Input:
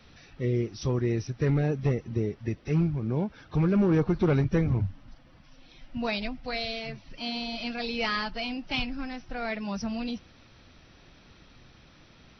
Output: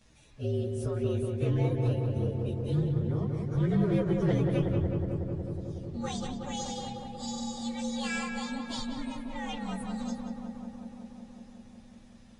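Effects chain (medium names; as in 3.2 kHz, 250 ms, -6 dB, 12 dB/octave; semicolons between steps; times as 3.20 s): frequency axis rescaled in octaves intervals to 117%; filtered feedback delay 184 ms, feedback 82%, low-pass 2.2 kHz, level -4 dB; trim -3.5 dB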